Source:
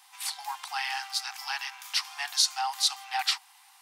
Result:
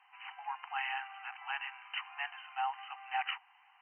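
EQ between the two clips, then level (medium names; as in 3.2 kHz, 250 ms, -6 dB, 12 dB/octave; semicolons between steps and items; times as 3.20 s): brick-wall FIR low-pass 3.1 kHz; -4.0 dB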